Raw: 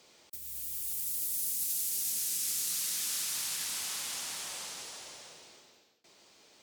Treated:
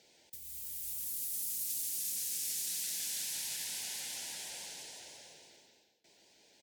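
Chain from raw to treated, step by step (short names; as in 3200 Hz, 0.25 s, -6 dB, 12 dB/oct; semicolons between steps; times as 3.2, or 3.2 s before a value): Butterworth band-stop 1200 Hz, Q 2.1; outdoor echo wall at 24 m, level -14 dB; shaped vibrato saw up 6 Hz, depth 100 cents; gain -4 dB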